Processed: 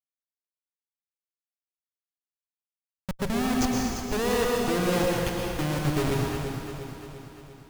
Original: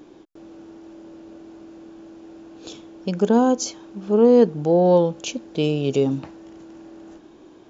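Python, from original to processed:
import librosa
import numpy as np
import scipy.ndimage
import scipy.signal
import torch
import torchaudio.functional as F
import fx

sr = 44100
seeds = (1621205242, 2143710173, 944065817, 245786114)

y = fx.bin_expand(x, sr, power=3.0)
y = fx.dynamic_eq(y, sr, hz=100.0, q=0.77, threshold_db=-36.0, ratio=4.0, max_db=4)
y = fx.schmitt(y, sr, flips_db=-26.0)
y = fx.echo_feedback(y, sr, ms=347, feedback_pct=58, wet_db=-9.5)
y = fx.rev_plate(y, sr, seeds[0], rt60_s=1.8, hf_ratio=0.9, predelay_ms=100, drr_db=-1.5)
y = y * librosa.db_to_amplitude(-1.0)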